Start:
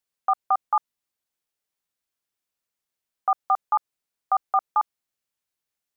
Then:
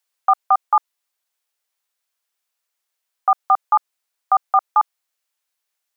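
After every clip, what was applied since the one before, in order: high-pass 610 Hz 12 dB/octave; in parallel at -2 dB: gain riding; on the sum: trim +2.5 dB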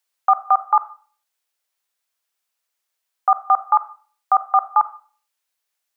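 reverberation RT60 0.45 s, pre-delay 4 ms, DRR 12.5 dB

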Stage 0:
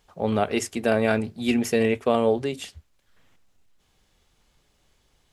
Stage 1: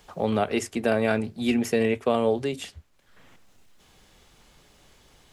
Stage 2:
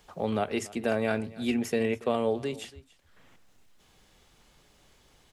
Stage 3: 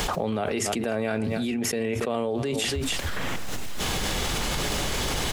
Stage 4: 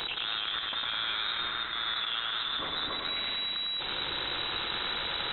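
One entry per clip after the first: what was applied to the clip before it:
three bands compressed up and down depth 40%; trim -1.5 dB
delay 283 ms -20.5 dB; trim -4.5 dB
level flattener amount 100%; trim -3 dB
rattle on loud lows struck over -31 dBFS, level -17 dBFS; thinning echo 103 ms, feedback 73%, high-pass 300 Hz, level -3.5 dB; frequency inversion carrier 3.9 kHz; trim -8.5 dB

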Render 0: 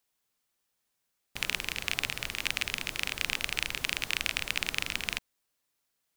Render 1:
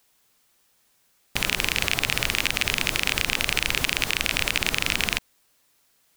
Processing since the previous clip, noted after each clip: loudness maximiser +16 dB; trim -1 dB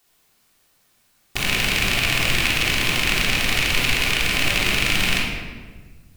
simulated room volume 1300 m³, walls mixed, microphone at 3.4 m; trim -2 dB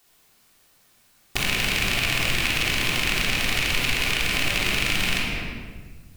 compression 2:1, threshold -26 dBFS, peak gain reduction 6.5 dB; trim +2.5 dB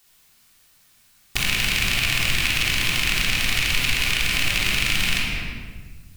peaking EQ 480 Hz -8.5 dB 2.4 oct; trim +3 dB

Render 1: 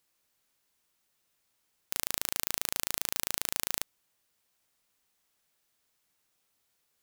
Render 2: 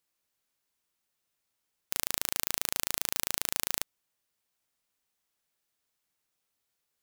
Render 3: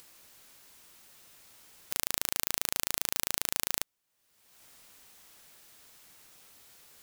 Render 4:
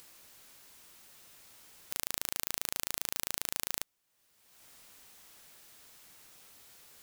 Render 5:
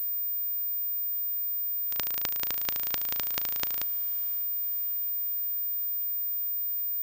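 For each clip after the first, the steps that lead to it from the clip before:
upward expansion 1.5:1, over -47 dBFS; trim +1 dB
upward compressor, threshold -36 dBFS
transient shaper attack -4 dB, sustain +2 dB
echo that smears into a reverb 581 ms, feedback 52%, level -16 dB; class-D stage that switches slowly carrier 15 kHz

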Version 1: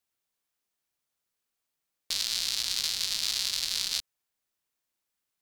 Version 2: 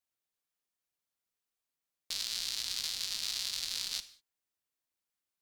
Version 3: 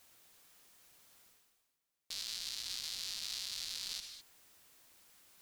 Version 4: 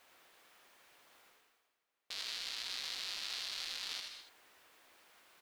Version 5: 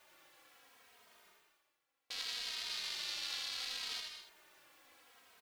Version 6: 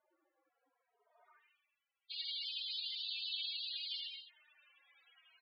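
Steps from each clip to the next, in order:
gated-style reverb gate 220 ms falling, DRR 11.5 dB; trim -6.5 dB
reverse; upward compressor, threshold -47 dBFS; reverse; peak limiter -27.5 dBFS, peak gain reduction 10.5 dB; trim +2.5 dB
tone controls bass -14 dB, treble -14 dB; on a send: delay 81 ms -6 dB; on the sum: trim +6.5 dB
endless flanger 2.9 ms -0.68 Hz; trim +3.5 dB
loudest bins only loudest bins 16; band-pass sweep 210 Hz -> 2.9 kHz, 0.97–1.52 s; trim +9.5 dB

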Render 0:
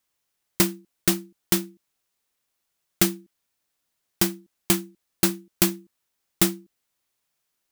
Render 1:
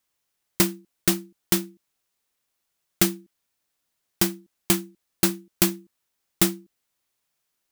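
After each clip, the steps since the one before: no audible change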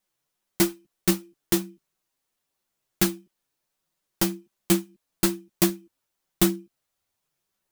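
in parallel at -11.5 dB: sample-and-hold 16×; on the sum: chorus voices 4, 0.48 Hz, delay 10 ms, depth 4.8 ms

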